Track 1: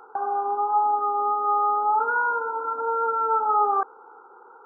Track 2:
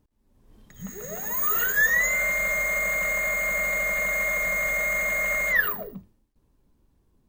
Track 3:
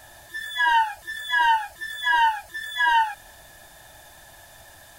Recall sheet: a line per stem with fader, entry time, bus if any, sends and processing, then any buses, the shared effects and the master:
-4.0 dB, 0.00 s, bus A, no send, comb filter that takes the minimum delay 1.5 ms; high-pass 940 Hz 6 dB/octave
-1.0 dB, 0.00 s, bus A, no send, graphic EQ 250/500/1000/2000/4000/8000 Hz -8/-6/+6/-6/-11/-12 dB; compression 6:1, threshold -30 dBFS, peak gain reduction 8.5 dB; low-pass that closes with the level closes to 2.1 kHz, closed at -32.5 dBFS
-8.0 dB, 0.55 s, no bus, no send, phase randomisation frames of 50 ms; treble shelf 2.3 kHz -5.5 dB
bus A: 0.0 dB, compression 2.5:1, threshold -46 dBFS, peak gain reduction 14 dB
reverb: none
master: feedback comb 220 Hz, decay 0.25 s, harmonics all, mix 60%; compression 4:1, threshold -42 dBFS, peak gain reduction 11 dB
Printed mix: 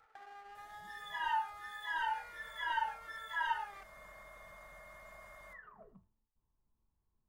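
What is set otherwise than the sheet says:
stem 1 -4.0 dB -> -10.0 dB; stem 2 -1.0 dB -> -9.0 dB; master: missing compression 4:1, threshold -42 dBFS, peak gain reduction 11 dB

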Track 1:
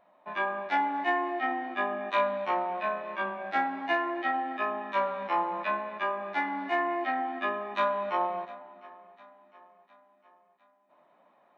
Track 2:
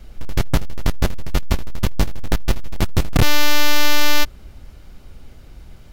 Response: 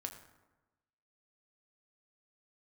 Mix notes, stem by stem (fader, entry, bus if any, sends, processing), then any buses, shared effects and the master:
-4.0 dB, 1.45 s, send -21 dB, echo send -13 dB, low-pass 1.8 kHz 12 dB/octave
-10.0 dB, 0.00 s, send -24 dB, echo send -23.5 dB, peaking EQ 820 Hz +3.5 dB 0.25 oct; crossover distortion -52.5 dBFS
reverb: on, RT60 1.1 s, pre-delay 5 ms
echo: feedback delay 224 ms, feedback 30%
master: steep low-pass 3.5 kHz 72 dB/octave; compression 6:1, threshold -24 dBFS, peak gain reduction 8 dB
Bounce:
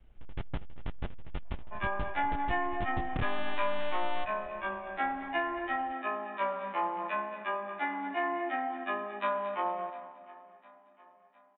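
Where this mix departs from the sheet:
stem 1: missing low-pass 1.8 kHz 12 dB/octave; stem 2 -10.0 dB -> -19.0 dB

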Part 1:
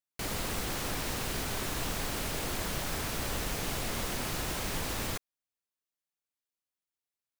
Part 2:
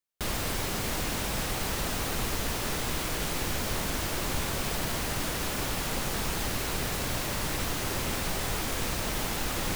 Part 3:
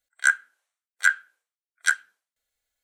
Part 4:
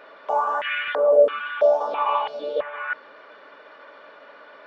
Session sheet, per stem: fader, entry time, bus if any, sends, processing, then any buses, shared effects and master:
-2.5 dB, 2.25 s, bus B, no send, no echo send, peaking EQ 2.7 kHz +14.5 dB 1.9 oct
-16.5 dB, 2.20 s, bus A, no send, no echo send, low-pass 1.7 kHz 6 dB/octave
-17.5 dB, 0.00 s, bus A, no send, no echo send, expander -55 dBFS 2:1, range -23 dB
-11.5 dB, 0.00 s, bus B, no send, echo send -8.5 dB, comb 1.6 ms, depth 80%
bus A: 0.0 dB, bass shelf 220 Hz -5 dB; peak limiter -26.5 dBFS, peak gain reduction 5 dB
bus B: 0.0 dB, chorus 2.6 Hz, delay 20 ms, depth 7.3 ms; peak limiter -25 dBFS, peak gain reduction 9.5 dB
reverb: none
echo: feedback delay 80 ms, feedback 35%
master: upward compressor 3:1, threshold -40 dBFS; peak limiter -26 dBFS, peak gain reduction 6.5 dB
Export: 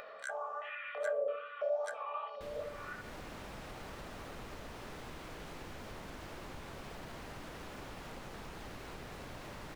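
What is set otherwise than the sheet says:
stem 1: muted; stem 3 -17.5 dB -> -24.5 dB; stem 4 -11.5 dB -> -18.5 dB

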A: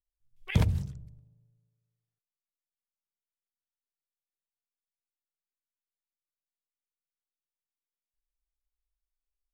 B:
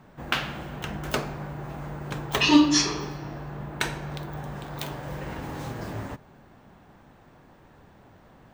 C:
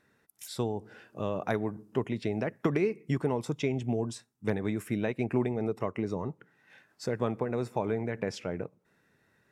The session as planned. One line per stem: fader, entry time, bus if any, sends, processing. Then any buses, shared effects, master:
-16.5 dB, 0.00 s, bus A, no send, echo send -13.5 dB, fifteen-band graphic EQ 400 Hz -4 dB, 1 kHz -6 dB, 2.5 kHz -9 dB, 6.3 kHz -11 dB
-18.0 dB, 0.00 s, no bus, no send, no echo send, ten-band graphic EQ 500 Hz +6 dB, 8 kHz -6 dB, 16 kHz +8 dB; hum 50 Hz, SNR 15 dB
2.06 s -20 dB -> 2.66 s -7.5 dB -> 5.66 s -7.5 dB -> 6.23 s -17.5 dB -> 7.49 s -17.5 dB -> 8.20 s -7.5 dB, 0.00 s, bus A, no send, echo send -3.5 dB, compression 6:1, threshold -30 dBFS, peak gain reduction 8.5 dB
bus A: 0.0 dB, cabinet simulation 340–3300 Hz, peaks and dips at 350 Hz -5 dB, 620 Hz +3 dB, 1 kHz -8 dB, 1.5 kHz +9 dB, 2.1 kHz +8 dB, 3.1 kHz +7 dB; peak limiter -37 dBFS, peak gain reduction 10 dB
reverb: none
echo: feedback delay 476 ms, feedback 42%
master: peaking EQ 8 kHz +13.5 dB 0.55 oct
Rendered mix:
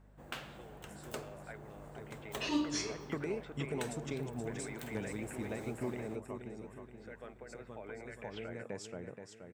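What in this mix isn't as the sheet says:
stem A: muted; stem C: missing compression 6:1, threshold -30 dBFS, peak gain reduction 8.5 dB

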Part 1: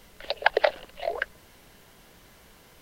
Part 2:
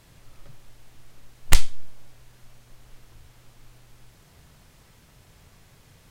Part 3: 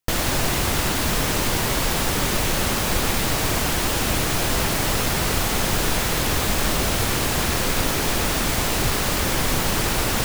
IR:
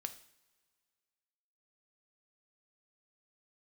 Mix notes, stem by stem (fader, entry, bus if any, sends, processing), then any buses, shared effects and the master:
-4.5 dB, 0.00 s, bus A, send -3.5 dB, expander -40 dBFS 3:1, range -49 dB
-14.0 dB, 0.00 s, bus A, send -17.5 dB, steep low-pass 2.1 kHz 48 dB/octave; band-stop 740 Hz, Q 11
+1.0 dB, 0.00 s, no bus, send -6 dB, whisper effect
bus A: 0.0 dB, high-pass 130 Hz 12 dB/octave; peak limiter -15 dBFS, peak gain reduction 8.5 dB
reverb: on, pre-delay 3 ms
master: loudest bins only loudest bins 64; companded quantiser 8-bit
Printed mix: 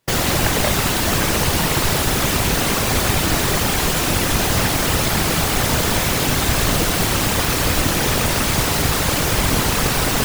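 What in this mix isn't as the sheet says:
stem 2: missing steep low-pass 2.1 kHz 48 dB/octave; master: missing loudest bins only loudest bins 64

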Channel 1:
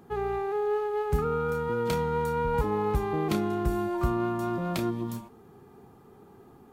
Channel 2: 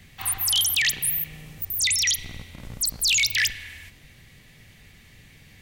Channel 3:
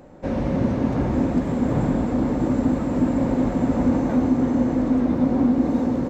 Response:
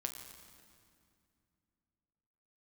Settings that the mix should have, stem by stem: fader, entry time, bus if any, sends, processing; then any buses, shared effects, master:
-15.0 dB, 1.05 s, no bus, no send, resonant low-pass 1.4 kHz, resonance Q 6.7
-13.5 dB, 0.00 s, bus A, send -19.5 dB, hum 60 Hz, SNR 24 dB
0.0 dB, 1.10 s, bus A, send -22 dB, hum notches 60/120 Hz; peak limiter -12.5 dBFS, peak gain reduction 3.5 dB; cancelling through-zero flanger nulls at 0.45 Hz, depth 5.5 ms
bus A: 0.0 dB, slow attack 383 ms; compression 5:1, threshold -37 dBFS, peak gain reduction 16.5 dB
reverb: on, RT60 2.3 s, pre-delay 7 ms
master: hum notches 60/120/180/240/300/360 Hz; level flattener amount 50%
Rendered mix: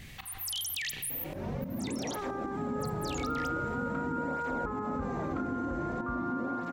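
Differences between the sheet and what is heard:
stem 1: entry 1.05 s -> 2.05 s; reverb return -6.5 dB

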